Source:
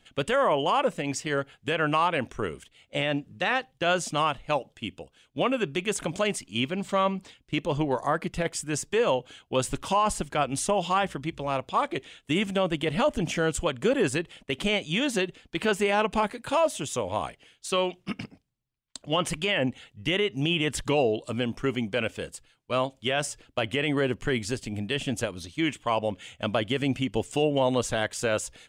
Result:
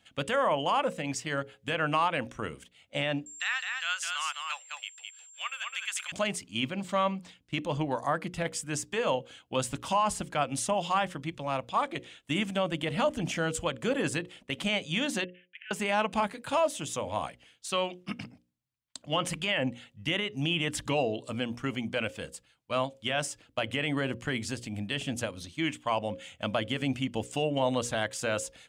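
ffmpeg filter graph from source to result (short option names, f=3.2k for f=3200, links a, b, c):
-filter_complex "[0:a]asettb=1/sr,asplit=3[a][b][c];[a]atrim=end=3.264[d];[b]atrim=start=3.26:end=6.12,asetpts=PTS-STARTPTS,afade=t=in:d=0.004:c=qsin,afade=t=out:st=2.856:d=0.004:c=qsin,highpass=f=1.3k:w=0.5412,highpass=f=1.3k:w=1.3066,aeval=exprs='val(0)+0.00891*sin(2*PI*7400*n/s)':c=same,aecho=1:1:209:0.631,atrim=end_sample=126126[e];[c]atrim=start=6.116[f];[d][e]acrossfade=d=0.004:c1=hsin:c2=qsin[g];[g][f]acrossfade=d=0.004:c1=qsin:c2=hsin,asettb=1/sr,asplit=3[h][i][j];[h]atrim=end=15.244[k];[i]atrim=start=15.24:end=15.71,asetpts=PTS-STARTPTS,afade=t=in:d=0.004:c=qsin,afade=t=out:st=0.466:d=0.004:c=qsin,asuperpass=centerf=2200:order=12:qfactor=1.4,acompressor=threshold=-56dB:ratio=1.5:attack=3.2:release=140:knee=1:detection=peak[l];[j]atrim=start=15.706[m];[k][l]acrossfade=d=0.004:c1=hsin:c2=qsin[n];[n][m]acrossfade=d=0.004:c1=qsin:c2=hsin,highpass=63,equalizer=f=400:t=o:w=0.3:g=-9,bandreject=f=60:t=h:w=6,bandreject=f=120:t=h:w=6,bandreject=f=180:t=h:w=6,bandreject=f=240:t=h:w=6,bandreject=f=300:t=h:w=6,bandreject=f=360:t=h:w=6,bandreject=f=420:t=h:w=6,bandreject=f=480:t=h:w=6,bandreject=f=540:t=h:w=6,volume=-2.5dB"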